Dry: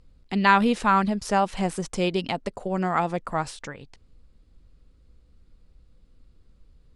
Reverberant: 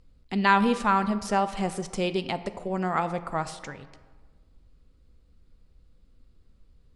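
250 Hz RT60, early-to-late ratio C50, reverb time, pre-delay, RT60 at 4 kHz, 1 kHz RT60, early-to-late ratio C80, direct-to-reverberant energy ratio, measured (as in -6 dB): 1.6 s, 13.5 dB, 1.5 s, 4 ms, 0.85 s, 1.5 s, 15.5 dB, 11.5 dB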